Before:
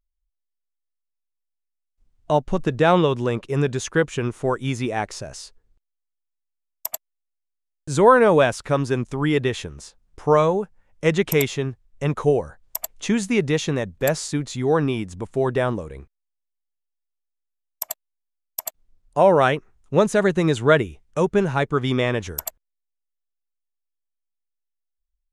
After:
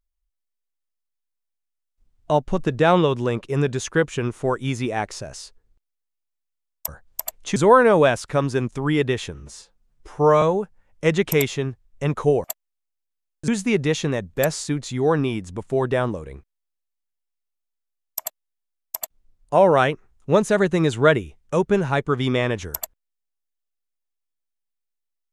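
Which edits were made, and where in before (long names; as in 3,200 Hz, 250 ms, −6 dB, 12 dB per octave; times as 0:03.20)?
0:06.88–0:07.92: swap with 0:12.44–0:13.12
0:09.70–0:10.42: time-stretch 1.5×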